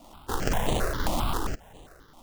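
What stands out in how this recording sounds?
aliases and images of a low sample rate 2300 Hz, jitter 20%; tremolo triangle 1.8 Hz, depth 50%; notches that jump at a steady rate 7.5 Hz 430–5200 Hz

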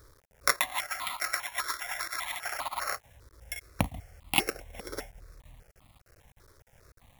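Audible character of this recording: a buzz of ramps at a fixed pitch in blocks of 8 samples; chopped level 3.3 Hz, depth 65%, duty 85%; a quantiser's noise floor 10-bit, dither none; notches that jump at a steady rate 5 Hz 750–1600 Hz

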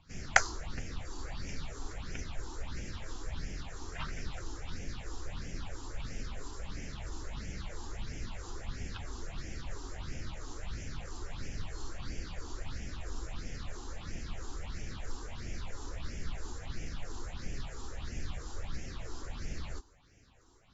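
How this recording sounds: phasing stages 6, 1.5 Hz, lowest notch 150–1100 Hz; AAC

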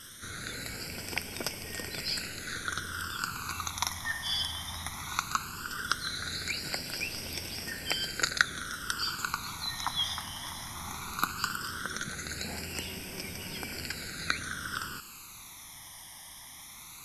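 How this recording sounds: a quantiser's noise floor 8-bit, dither triangular; phasing stages 12, 0.17 Hz, lowest notch 450–1300 Hz; MP2

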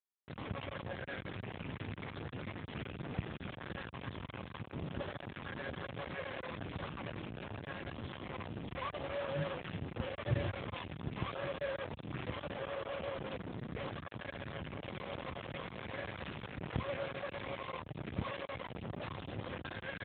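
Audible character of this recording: chopped level 5.6 Hz, depth 60%, duty 85%; a quantiser's noise floor 6-bit, dither none; AMR-NB

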